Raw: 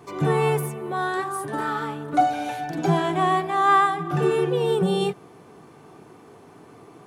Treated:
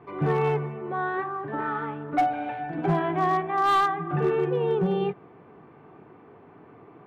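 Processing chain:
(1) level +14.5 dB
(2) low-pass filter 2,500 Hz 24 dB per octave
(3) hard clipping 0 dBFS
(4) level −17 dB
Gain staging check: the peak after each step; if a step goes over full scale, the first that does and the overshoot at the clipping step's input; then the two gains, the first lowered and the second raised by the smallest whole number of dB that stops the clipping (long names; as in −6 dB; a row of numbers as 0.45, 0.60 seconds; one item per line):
+6.5, +6.5, 0.0, −17.0 dBFS
step 1, 6.5 dB
step 1 +7.5 dB, step 4 −10 dB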